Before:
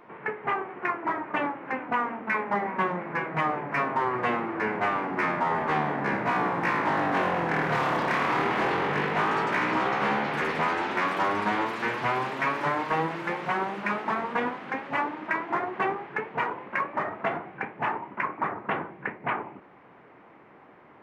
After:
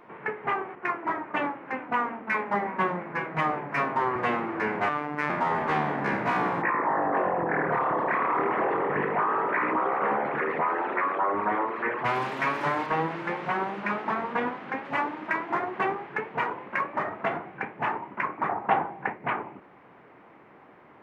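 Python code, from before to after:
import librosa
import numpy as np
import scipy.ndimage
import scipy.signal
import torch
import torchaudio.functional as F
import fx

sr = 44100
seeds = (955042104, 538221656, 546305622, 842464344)

y = fx.band_widen(x, sr, depth_pct=40, at=(0.75, 4.16))
y = fx.robotise(y, sr, hz=148.0, at=(4.89, 5.3))
y = fx.envelope_sharpen(y, sr, power=2.0, at=(6.61, 12.04), fade=0.02)
y = fx.lowpass(y, sr, hz=3500.0, slope=6, at=(12.86, 14.85))
y = fx.peak_eq(y, sr, hz=790.0, db=12.5, octaves=0.48, at=(18.49, 19.14))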